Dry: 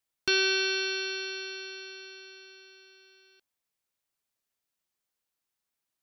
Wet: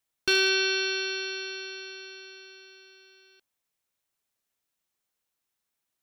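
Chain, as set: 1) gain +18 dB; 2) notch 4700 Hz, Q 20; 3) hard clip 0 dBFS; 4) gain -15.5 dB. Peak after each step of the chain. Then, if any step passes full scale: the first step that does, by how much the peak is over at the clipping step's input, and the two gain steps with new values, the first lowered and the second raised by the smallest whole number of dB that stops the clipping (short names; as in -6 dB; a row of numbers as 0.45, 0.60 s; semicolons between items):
+5.5, +5.0, 0.0, -15.5 dBFS; step 1, 5.0 dB; step 1 +13 dB, step 4 -10.5 dB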